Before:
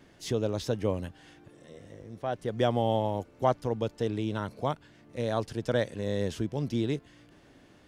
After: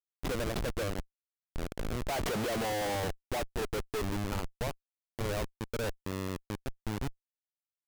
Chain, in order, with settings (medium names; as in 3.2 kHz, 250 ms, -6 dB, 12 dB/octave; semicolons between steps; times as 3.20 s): Doppler pass-by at 2.34 s, 23 m/s, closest 3.2 m; overdrive pedal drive 31 dB, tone 3.2 kHz, clips at -15 dBFS; Schmitt trigger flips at -36 dBFS